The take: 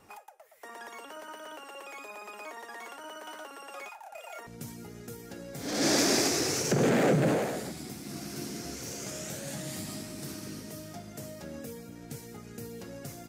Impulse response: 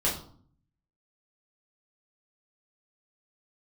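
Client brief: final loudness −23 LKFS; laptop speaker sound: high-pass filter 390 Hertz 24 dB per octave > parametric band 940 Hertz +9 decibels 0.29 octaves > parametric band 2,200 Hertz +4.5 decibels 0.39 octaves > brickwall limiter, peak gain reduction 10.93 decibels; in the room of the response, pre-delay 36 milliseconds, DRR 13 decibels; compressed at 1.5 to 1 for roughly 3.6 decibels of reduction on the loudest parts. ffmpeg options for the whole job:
-filter_complex "[0:a]acompressor=threshold=-31dB:ratio=1.5,asplit=2[link_01][link_02];[1:a]atrim=start_sample=2205,adelay=36[link_03];[link_02][link_03]afir=irnorm=-1:irlink=0,volume=-22.5dB[link_04];[link_01][link_04]amix=inputs=2:normalize=0,highpass=frequency=390:width=0.5412,highpass=frequency=390:width=1.3066,equalizer=frequency=940:width_type=o:width=0.29:gain=9,equalizer=frequency=2200:width_type=o:width=0.39:gain=4.5,volume=17dB,alimiter=limit=-11dB:level=0:latency=1"

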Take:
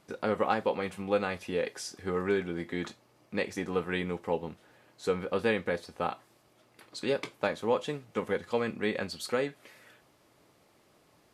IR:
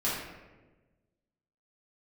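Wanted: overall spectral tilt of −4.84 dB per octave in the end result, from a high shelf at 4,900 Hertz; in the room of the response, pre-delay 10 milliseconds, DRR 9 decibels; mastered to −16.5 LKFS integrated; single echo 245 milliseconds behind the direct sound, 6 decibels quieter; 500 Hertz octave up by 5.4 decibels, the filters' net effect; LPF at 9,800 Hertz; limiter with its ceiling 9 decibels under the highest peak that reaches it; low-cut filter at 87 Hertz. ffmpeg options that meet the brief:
-filter_complex "[0:a]highpass=87,lowpass=9800,equalizer=frequency=500:width_type=o:gain=6,highshelf=frequency=4900:gain=5.5,alimiter=limit=-19dB:level=0:latency=1,aecho=1:1:245:0.501,asplit=2[link_01][link_02];[1:a]atrim=start_sample=2205,adelay=10[link_03];[link_02][link_03]afir=irnorm=-1:irlink=0,volume=-17.5dB[link_04];[link_01][link_04]amix=inputs=2:normalize=0,volume=14dB"

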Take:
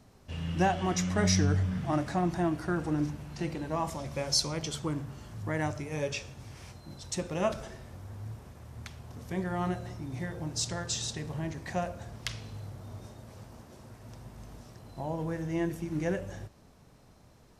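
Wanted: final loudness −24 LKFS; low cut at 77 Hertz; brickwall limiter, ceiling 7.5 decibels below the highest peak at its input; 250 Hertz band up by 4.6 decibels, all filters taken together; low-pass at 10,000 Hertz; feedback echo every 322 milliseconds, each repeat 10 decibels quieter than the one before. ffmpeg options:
ffmpeg -i in.wav -af "highpass=77,lowpass=10000,equalizer=frequency=250:width_type=o:gain=7.5,alimiter=limit=-19.5dB:level=0:latency=1,aecho=1:1:322|644|966|1288:0.316|0.101|0.0324|0.0104,volume=7.5dB" out.wav

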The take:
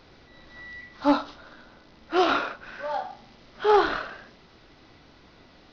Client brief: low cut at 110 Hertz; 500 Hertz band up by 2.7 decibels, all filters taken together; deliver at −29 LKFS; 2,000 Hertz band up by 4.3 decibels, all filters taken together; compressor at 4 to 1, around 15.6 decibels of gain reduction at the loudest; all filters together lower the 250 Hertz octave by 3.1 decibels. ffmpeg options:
ffmpeg -i in.wav -af "highpass=110,equalizer=frequency=250:width_type=o:gain=-8,equalizer=frequency=500:width_type=o:gain=6.5,equalizer=frequency=2000:width_type=o:gain=6,acompressor=threshold=-31dB:ratio=4,volume=6.5dB" out.wav

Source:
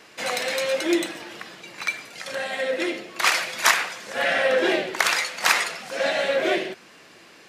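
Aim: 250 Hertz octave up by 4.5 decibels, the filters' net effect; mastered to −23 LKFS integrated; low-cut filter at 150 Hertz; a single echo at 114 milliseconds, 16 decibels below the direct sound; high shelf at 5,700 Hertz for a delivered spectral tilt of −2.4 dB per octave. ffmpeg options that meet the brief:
ffmpeg -i in.wav -af "highpass=150,equalizer=frequency=250:width_type=o:gain=8,highshelf=frequency=5700:gain=-9,aecho=1:1:114:0.158" out.wav

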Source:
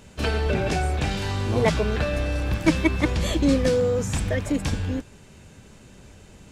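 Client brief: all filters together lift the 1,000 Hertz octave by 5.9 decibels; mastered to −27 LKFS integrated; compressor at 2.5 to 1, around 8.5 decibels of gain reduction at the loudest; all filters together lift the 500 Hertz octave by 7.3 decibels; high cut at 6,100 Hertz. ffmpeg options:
ffmpeg -i in.wav -af "lowpass=6100,equalizer=frequency=500:width_type=o:gain=7,equalizer=frequency=1000:width_type=o:gain=5,acompressor=threshold=-24dB:ratio=2.5,volume=-1dB" out.wav

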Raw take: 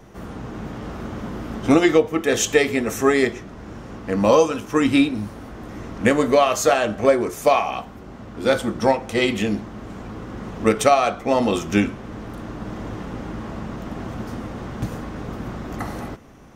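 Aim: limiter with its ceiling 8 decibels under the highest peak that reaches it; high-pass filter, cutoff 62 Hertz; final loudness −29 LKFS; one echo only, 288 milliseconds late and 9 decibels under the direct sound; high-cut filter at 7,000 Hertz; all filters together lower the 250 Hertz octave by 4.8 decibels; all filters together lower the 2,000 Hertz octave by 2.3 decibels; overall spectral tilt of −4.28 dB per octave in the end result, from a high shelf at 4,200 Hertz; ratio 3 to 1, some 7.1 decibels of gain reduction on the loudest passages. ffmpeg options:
ffmpeg -i in.wav -af "highpass=62,lowpass=7000,equalizer=frequency=250:width_type=o:gain=-6,equalizer=frequency=2000:width_type=o:gain=-4,highshelf=frequency=4200:gain=6,acompressor=threshold=-21dB:ratio=3,alimiter=limit=-15.5dB:level=0:latency=1,aecho=1:1:288:0.355" out.wav

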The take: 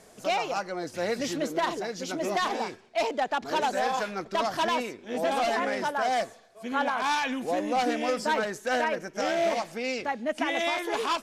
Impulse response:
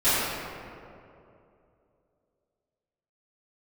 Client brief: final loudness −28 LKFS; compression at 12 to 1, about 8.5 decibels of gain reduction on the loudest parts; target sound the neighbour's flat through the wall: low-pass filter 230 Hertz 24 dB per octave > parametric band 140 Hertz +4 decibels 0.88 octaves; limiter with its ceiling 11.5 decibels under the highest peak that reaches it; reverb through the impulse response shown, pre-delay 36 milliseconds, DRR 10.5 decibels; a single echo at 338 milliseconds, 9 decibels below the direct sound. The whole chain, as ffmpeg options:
-filter_complex "[0:a]acompressor=threshold=-31dB:ratio=12,alimiter=level_in=8.5dB:limit=-24dB:level=0:latency=1,volume=-8.5dB,aecho=1:1:338:0.355,asplit=2[link_01][link_02];[1:a]atrim=start_sample=2205,adelay=36[link_03];[link_02][link_03]afir=irnorm=-1:irlink=0,volume=-28.5dB[link_04];[link_01][link_04]amix=inputs=2:normalize=0,lowpass=frequency=230:width=0.5412,lowpass=frequency=230:width=1.3066,equalizer=frequency=140:width_type=o:width=0.88:gain=4,volume=23.5dB"

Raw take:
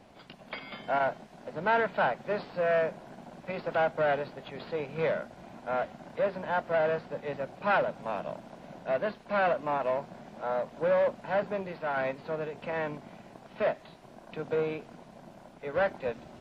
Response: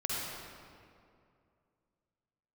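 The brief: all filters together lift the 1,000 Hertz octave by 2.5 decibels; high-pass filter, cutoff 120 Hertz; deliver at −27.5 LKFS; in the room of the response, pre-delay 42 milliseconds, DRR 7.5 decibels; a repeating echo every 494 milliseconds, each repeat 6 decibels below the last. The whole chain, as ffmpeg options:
-filter_complex "[0:a]highpass=120,equalizer=frequency=1000:width_type=o:gain=3.5,aecho=1:1:494|988|1482|1976|2470|2964:0.501|0.251|0.125|0.0626|0.0313|0.0157,asplit=2[link_01][link_02];[1:a]atrim=start_sample=2205,adelay=42[link_03];[link_02][link_03]afir=irnorm=-1:irlink=0,volume=-13dB[link_04];[link_01][link_04]amix=inputs=2:normalize=0,volume=1dB"

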